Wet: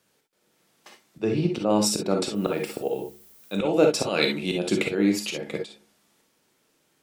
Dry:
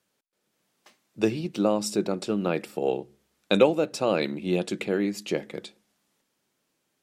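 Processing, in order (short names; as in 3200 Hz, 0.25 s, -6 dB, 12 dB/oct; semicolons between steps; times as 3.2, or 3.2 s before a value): 1.21–1.7 LPF 2400 Hz 6 dB/oct; 4.06–4.52 tilt shelf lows -5.5 dB, about 1500 Hz; auto swell 0.206 s; 2.34–3.52 added noise violet -61 dBFS; non-linear reverb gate 80 ms rising, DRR 2.5 dB; gain +6 dB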